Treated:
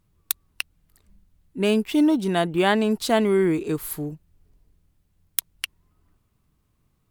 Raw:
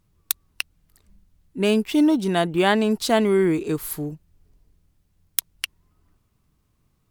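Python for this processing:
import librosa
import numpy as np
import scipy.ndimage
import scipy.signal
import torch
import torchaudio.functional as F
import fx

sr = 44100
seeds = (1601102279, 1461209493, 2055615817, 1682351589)

y = fx.peak_eq(x, sr, hz=5600.0, db=-2.5, octaves=0.77)
y = F.gain(torch.from_numpy(y), -1.0).numpy()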